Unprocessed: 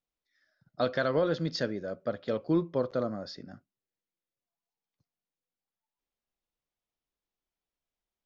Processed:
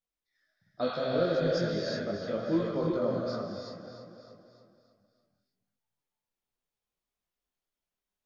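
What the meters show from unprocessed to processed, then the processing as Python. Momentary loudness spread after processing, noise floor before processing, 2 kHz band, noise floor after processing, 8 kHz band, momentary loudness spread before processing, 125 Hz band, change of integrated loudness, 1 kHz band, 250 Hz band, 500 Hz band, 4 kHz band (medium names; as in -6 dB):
17 LU, under -85 dBFS, -2.5 dB, under -85 dBFS, no reading, 13 LU, +1.0 dB, 0.0 dB, -0.5 dB, +0.5 dB, +1.0 dB, +0.5 dB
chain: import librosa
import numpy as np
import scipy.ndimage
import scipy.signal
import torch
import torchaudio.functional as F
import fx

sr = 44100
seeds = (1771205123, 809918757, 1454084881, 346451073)

p1 = fx.rev_gated(x, sr, seeds[0], gate_ms=400, shape='rising', drr_db=-1.5)
p2 = fx.spec_repair(p1, sr, seeds[1], start_s=0.89, length_s=0.73, low_hz=710.0, high_hz=4700.0, source='both')
p3 = p2 + fx.echo_feedback(p2, sr, ms=302, feedback_pct=51, wet_db=-10, dry=0)
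y = fx.detune_double(p3, sr, cents=24)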